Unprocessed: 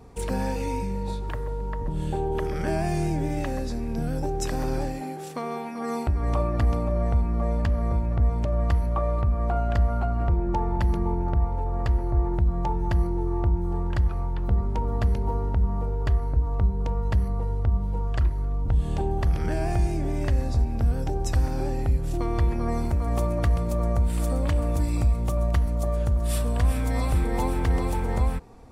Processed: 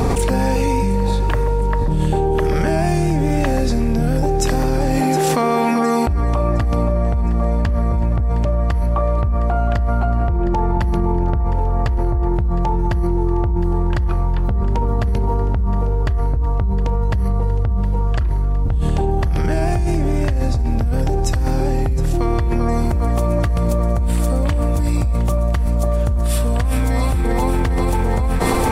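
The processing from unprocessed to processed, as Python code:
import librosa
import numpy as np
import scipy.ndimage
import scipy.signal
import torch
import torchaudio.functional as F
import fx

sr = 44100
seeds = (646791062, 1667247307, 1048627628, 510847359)

y = fx.echo_thinned(x, sr, ms=713, feedback_pct=55, hz=420.0, wet_db=-17.0)
y = fx.env_flatten(y, sr, amount_pct=100)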